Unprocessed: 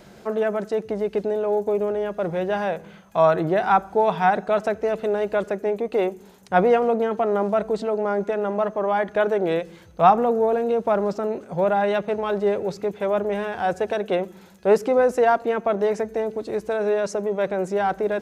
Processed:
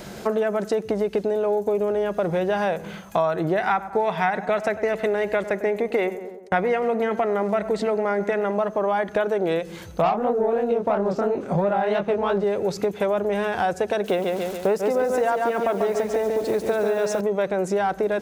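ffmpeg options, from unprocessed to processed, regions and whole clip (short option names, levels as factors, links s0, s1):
-filter_complex "[0:a]asettb=1/sr,asplit=3[s0][s1][s2];[s0]atrim=end=3.584[s3];[s1]atrim=start=3.58:end=8.52,asetpts=PTS-STARTPTS,afade=t=in:d=0.004:c=qsin,afade=t=out:st=4.936:d=0.004:c=qsin,agate=range=0.0224:threshold=0.0158:ratio=3:release=100:detection=peak,equalizer=f=2000:t=o:w=0.51:g=10.5,asplit=2[s4][s5];[s5]adelay=99,lowpass=f=1600:p=1,volume=0.168,asplit=2[s6][s7];[s7]adelay=99,lowpass=f=1600:p=1,volume=0.52,asplit=2[s8][s9];[s9]adelay=99,lowpass=f=1600:p=1,volume=0.52,asplit=2[s10][s11];[s11]adelay=99,lowpass=f=1600:p=1,volume=0.52,asplit=2[s12][s13];[s13]adelay=99,lowpass=f=1600:p=1,volume=0.52[s14];[s4][s6][s8][s10][s12][s14]amix=inputs=6:normalize=0,atrim=end_sample=217854[s15];[s2]atrim=start=8.516[s16];[s3][s15]acrossfade=d=0.004:c1=hsin:c2=qsin[s17];[s17][s16]acrossfade=d=0.004:c1=qsin:c2=hsin,asettb=1/sr,asplit=3[s18][s19][s20];[s18]atrim=end=10.024[s21];[s19]atrim=start=10.02:end=12.44,asetpts=PTS-STARTPTS,afade=t=in:d=0.004:c=qsin,afade=t=out:st=2.416:d=0.004:c=qsin,highshelf=f=4700:g=-10.5,acontrast=82,flanger=delay=20:depth=7.2:speed=3[s22];[s20]atrim=start=12.436[s23];[s21][s22]acrossfade=d=0.004:c1=hsin:c2=qsin[s24];[s24][s23]acrossfade=d=0.004:c1=qsin:c2=hsin,asettb=1/sr,asplit=3[s25][s26][s27];[s25]atrim=end=14.044[s28];[s26]atrim=start=14.04:end=17.21,asetpts=PTS-STARTPTS,afade=t=in:d=0.004:c=qsin,afade=t=out:st=3.166:d=0.004:c=qsin,acrusher=bits=7:mix=0:aa=0.5,aecho=1:1:141|282|423|564|705:0.562|0.236|0.0992|0.0417|0.0175,atrim=end_sample=139797[s29];[s27]atrim=start=17.206[s30];[s28][s29]acrossfade=d=0.004:c1=hsin:c2=qsin[s31];[s31][s30]acrossfade=d=0.004:c1=qsin:c2=hsin,highshelf=f=5000:g=5,acompressor=threshold=0.0355:ratio=6,volume=2.82"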